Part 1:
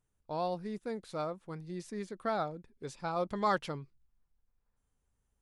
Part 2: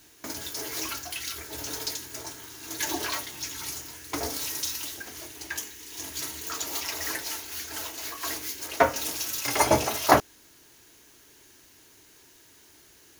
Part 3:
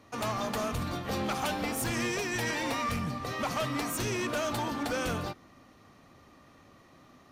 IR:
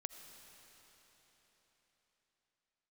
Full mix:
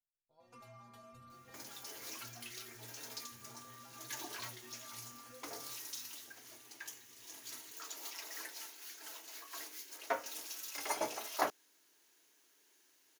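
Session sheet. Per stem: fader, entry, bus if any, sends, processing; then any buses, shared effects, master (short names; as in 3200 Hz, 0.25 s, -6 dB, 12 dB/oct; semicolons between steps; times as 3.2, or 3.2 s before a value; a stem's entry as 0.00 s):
-19.0 dB, 0.00 s, bus A, no send, dry
-14.0 dB, 1.30 s, no bus, no send, HPF 270 Hz; low shelf 410 Hz -5 dB
-2.5 dB, 0.40 s, bus A, no send, compressor, threshold -34 dBFS, peak gain reduction 5.5 dB
bus A: 0.0 dB, metallic resonator 120 Hz, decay 0.45 s, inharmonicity 0.008; compressor 2.5:1, threshold -58 dBFS, peak gain reduction 9.5 dB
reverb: off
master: dry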